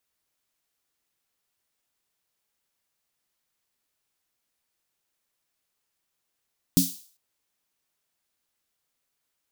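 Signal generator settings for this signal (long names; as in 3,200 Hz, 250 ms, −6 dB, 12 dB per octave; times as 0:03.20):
synth snare length 0.40 s, tones 180 Hz, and 270 Hz, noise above 3,900 Hz, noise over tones −5 dB, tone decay 0.22 s, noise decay 0.47 s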